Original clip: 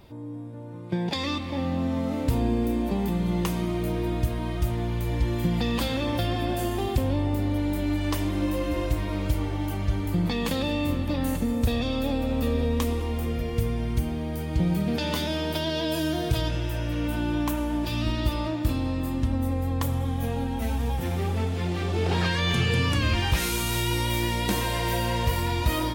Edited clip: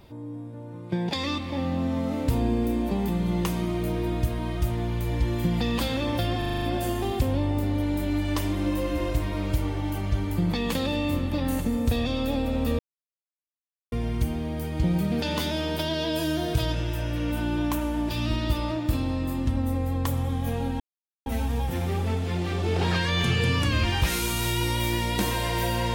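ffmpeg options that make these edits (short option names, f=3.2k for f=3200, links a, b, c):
-filter_complex "[0:a]asplit=10[a][b][c][d][e][f][g][h][i][j];[a]atrim=end=6.422[k];[b]atrim=start=6.378:end=6.422[l];[c]atrim=start=6.378:end=6.422[m];[d]atrim=start=6.378:end=6.422[n];[e]atrim=start=6.378:end=6.422[o];[f]atrim=start=6.378:end=6.422[p];[g]atrim=start=6.378:end=12.55,asetpts=PTS-STARTPTS,afade=t=out:st=6.168:d=0.004:c=hsin[q];[h]atrim=start=12.55:end=13.68,asetpts=PTS-STARTPTS,volume=0[r];[i]atrim=start=13.68:end=20.56,asetpts=PTS-STARTPTS,afade=t=in:d=0.004:c=hsin,afade=t=out:st=6.876:d=0.004:c=hsin,apad=pad_dur=0.46[s];[j]atrim=start=20.56,asetpts=PTS-STARTPTS,afade=t=in:d=0.004:c=hsin[t];[k][l]acrossfade=d=0.004:c1=hsin:c2=hsin[u];[u][m]acrossfade=d=0.004:c1=hsin:c2=hsin[v];[v][n]acrossfade=d=0.004:c1=hsin:c2=hsin[w];[w][o]acrossfade=d=0.004:c1=hsin:c2=hsin[x];[x][p]acrossfade=d=0.004:c1=hsin:c2=hsin[y];[q][r][s][t]concat=n=4:v=0:a=1[z];[y][z]acrossfade=d=0.004:c1=hsin:c2=hsin"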